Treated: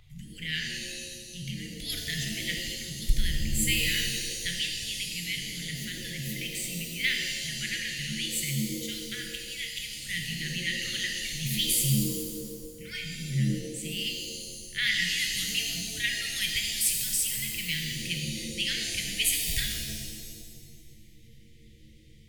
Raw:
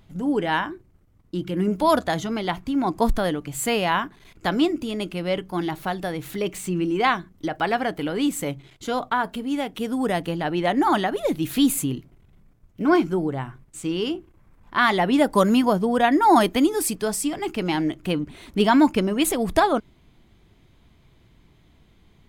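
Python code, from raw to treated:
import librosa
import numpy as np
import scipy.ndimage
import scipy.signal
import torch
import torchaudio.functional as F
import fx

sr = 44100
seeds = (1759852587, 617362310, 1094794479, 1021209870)

y = scipy.signal.sosfilt(scipy.signal.cheby1(5, 1.0, [150.0, 1900.0], 'bandstop', fs=sr, output='sos'), x)
y = fx.vibrato(y, sr, rate_hz=2.7, depth_cents=10.0)
y = fx.rev_shimmer(y, sr, seeds[0], rt60_s=1.6, semitones=7, shimmer_db=-2, drr_db=1.5)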